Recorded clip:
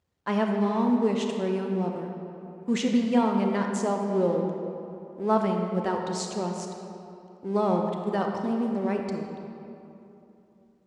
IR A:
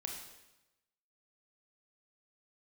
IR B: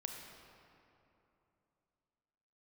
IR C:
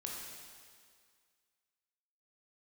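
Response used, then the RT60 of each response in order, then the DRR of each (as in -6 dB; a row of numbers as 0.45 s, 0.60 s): B; 1.0 s, 3.0 s, 2.0 s; 1.0 dB, 2.5 dB, -2.0 dB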